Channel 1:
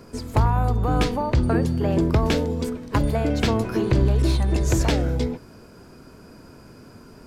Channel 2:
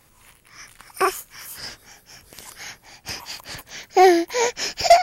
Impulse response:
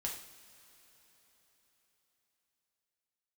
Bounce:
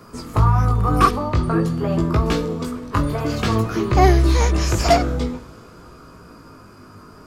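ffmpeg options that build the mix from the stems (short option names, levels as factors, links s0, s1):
-filter_complex "[0:a]flanger=delay=17:depth=3.3:speed=0.5,acrossover=split=390|3000[s0][s1][s2];[s1]acompressor=threshold=0.0355:ratio=6[s3];[s0][s3][s2]amix=inputs=3:normalize=0,volume=1.06,asplit=2[s4][s5];[s5]volume=0.596[s6];[1:a]volume=0.631,asplit=3[s7][s8][s9];[s7]atrim=end=1.11,asetpts=PTS-STARTPTS,afade=t=out:st=1.106:d=0.004:c=hsin[s10];[s8]atrim=start=1.11:end=3.18,asetpts=PTS-STARTPTS,volume=0[s11];[s9]atrim=start=3.18,asetpts=PTS-STARTPTS,afade=t=in:d=0.004:c=hsin[s12];[s10][s11][s12]concat=n=3:v=0:a=1[s13];[2:a]atrim=start_sample=2205[s14];[s6][s14]afir=irnorm=-1:irlink=0[s15];[s4][s13][s15]amix=inputs=3:normalize=0,equalizer=f=1200:w=4.2:g=14"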